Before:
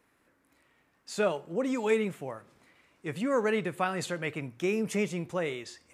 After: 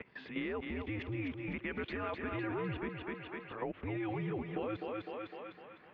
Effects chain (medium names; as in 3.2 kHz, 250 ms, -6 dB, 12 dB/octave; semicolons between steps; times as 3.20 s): reverse the whole clip; level held to a coarse grid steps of 19 dB; thinning echo 253 ms, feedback 49%, high-pass 370 Hz, level -5 dB; compression 3:1, threshold -53 dBFS, peak gain reduction 14 dB; mistuned SSB -98 Hz 200–3300 Hz; trim +14 dB